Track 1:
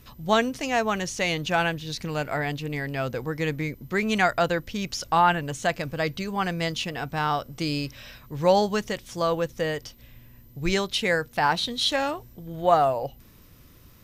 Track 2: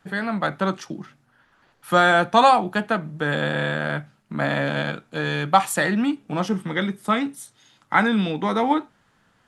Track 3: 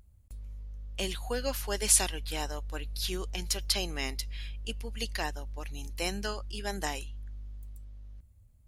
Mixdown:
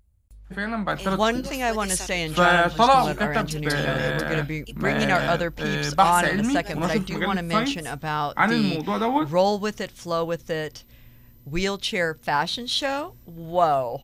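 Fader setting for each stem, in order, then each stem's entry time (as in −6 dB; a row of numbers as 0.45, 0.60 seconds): −0.5, −2.0, −4.0 decibels; 0.90, 0.45, 0.00 seconds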